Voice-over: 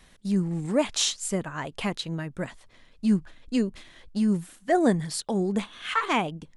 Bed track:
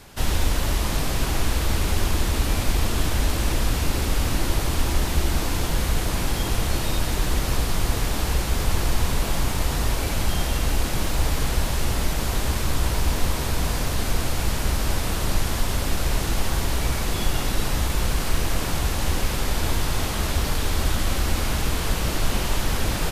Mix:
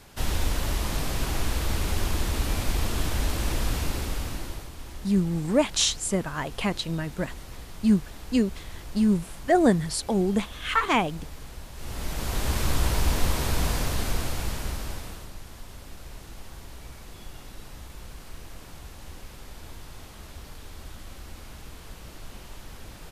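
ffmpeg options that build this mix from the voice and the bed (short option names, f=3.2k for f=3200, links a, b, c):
-filter_complex "[0:a]adelay=4800,volume=2dB[a];[1:a]volume=12.5dB,afade=t=out:st=3.76:d=0.95:silence=0.199526,afade=t=in:st=11.74:d=0.89:silence=0.141254,afade=t=out:st=13.63:d=1.68:silence=0.125893[b];[a][b]amix=inputs=2:normalize=0"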